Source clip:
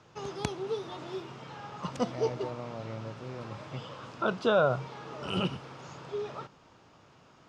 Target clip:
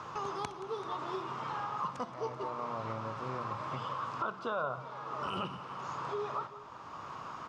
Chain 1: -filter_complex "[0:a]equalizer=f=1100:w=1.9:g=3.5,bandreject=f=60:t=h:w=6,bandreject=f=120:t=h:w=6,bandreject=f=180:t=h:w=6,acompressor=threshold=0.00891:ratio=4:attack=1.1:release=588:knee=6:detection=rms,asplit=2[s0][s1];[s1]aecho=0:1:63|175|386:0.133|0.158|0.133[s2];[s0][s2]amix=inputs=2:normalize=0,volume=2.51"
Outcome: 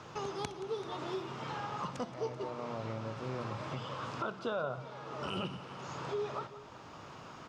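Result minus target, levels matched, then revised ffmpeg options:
1 kHz band -3.5 dB
-filter_complex "[0:a]equalizer=f=1100:w=1.9:g=15.5,bandreject=f=60:t=h:w=6,bandreject=f=120:t=h:w=6,bandreject=f=180:t=h:w=6,acompressor=threshold=0.00891:ratio=4:attack=1.1:release=588:knee=6:detection=rms,asplit=2[s0][s1];[s1]aecho=0:1:63|175|386:0.133|0.158|0.133[s2];[s0][s2]amix=inputs=2:normalize=0,volume=2.51"

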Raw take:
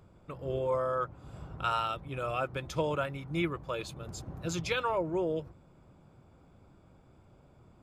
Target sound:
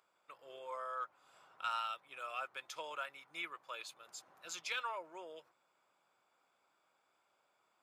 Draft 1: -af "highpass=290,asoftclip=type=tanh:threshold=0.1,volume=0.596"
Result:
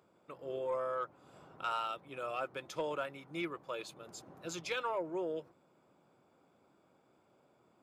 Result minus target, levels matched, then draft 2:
250 Hz band +14.5 dB
-af "highpass=1100,asoftclip=type=tanh:threshold=0.1,volume=0.596"

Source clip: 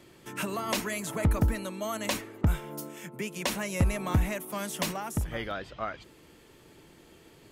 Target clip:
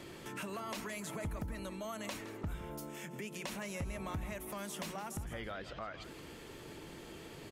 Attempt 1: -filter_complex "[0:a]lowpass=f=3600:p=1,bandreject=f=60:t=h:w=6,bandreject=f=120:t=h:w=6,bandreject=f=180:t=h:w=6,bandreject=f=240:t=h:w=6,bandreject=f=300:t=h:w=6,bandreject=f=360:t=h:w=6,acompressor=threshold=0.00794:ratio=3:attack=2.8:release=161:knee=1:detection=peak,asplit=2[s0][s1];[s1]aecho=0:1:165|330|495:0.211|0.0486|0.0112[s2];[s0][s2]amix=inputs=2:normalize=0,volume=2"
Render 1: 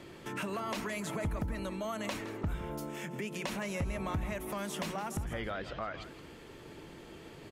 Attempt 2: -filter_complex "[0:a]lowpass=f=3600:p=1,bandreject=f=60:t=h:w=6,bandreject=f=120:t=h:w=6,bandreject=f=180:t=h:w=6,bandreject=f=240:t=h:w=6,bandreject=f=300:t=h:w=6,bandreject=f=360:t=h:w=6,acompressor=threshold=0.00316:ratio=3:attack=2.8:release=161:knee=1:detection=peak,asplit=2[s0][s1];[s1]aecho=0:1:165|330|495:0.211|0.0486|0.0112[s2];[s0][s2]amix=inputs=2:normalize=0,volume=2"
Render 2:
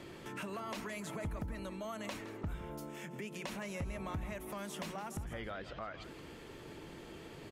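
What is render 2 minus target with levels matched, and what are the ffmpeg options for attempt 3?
8 kHz band -3.5 dB
-filter_complex "[0:a]lowpass=f=9000:p=1,bandreject=f=60:t=h:w=6,bandreject=f=120:t=h:w=6,bandreject=f=180:t=h:w=6,bandreject=f=240:t=h:w=6,bandreject=f=300:t=h:w=6,bandreject=f=360:t=h:w=6,acompressor=threshold=0.00316:ratio=3:attack=2.8:release=161:knee=1:detection=peak,asplit=2[s0][s1];[s1]aecho=0:1:165|330|495:0.211|0.0486|0.0112[s2];[s0][s2]amix=inputs=2:normalize=0,volume=2"

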